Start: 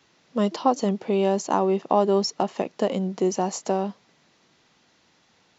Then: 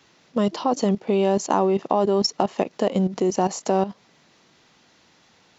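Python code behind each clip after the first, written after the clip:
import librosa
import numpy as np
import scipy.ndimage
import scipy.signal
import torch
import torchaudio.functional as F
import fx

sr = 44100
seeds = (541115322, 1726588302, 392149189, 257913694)

y = fx.level_steps(x, sr, step_db=13)
y = F.gain(torch.from_numpy(y), 7.0).numpy()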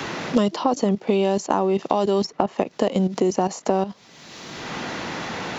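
y = fx.band_squash(x, sr, depth_pct=100)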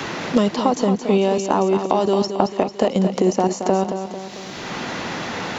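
y = fx.echo_feedback(x, sr, ms=223, feedback_pct=52, wet_db=-8.5)
y = F.gain(torch.from_numpy(y), 2.0).numpy()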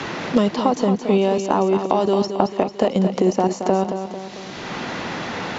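y = fx.air_absorb(x, sr, metres=57.0)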